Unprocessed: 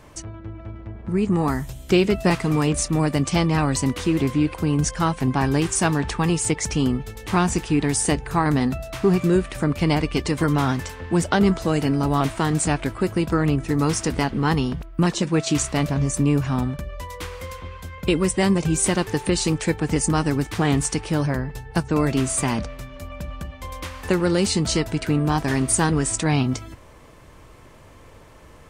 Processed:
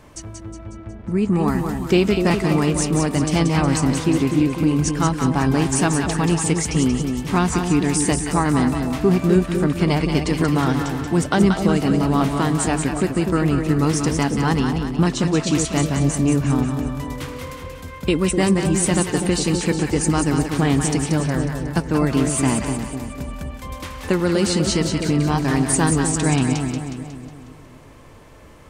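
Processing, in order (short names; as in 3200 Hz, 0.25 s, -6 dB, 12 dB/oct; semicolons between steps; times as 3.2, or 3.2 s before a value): bell 240 Hz +3 dB 0.79 oct; on a send: split-band echo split 780 Hz, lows 0.249 s, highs 0.182 s, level -5.5 dB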